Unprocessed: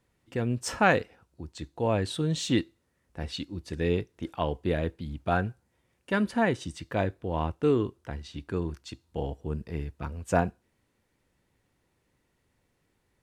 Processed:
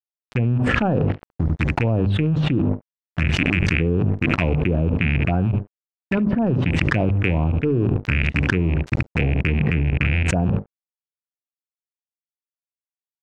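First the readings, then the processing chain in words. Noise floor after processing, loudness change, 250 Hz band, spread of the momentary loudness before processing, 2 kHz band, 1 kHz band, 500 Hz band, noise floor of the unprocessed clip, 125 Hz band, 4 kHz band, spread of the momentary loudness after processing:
under -85 dBFS, +9.0 dB, +9.5 dB, 14 LU, +10.0 dB, +1.5 dB, +3.5 dB, -74 dBFS, +14.0 dB, +5.5 dB, 5 LU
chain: rattle on loud lows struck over -38 dBFS, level -15 dBFS; gate with hold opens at -51 dBFS; saturation -10.5 dBFS, distortion -23 dB; hum notches 50/100/150/200/250 Hz; level-controlled noise filter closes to 1.7 kHz, open at -26.5 dBFS; touch-sensitive phaser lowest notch 330 Hz, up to 2.1 kHz, full sweep at -22 dBFS; graphic EQ 125/500/1000/4000 Hz +6/-4/-5/-9 dB; crossover distortion -49 dBFS; low-pass that closes with the level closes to 1 kHz, closed at -26.5 dBFS; treble shelf 8.2 kHz -4.5 dB; on a send: delay 71 ms -22.5 dB; on the sum: level flattener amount 100%; trim +3 dB

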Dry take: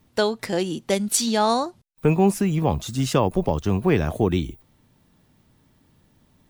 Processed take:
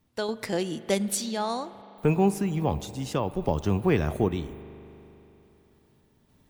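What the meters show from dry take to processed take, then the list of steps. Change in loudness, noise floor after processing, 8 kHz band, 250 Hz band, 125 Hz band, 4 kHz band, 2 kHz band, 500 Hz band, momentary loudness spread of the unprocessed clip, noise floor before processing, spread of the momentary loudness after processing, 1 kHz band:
-5.0 dB, -64 dBFS, -7.5 dB, -5.0 dB, -4.5 dB, -7.5 dB, -5.0 dB, -5.0 dB, 6 LU, -62 dBFS, 11 LU, -6.5 dB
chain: random-step tremolo; spring tank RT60 3.4 s, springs 40 ms, chirp 75 ms, DRR 14.5 dB; trim -3 dB

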